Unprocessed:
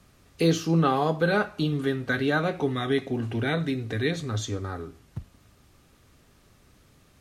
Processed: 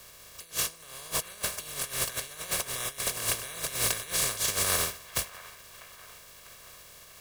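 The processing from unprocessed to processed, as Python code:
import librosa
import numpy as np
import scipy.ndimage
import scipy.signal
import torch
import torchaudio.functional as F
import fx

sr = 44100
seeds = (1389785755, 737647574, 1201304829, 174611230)

p1 = fx.spec_flatten(x, sr, power=0.2)
p2 = fx.dynamic_eq(p1, sr, hz=9600.0, q=1.1, threshold_db=-42.0, ratio=4.0, max_db=6)
p3 = fx.over_compress(p2, sr, threshold_db=-32.0, ratio=-0.5)
p4 = p3 + 0.61 * np.pad(p3, (int(1.8 * sr / 1000.0), 0))[:len(p3)]
p5 = p4 + fx.echo_wet_bandpass(p4, sr, ms=647, feedback_pct=52, hz=1400.0, wet_db=-15.0, dry=0)
y = p5 * librosa.db_to_amplitude(-1.5)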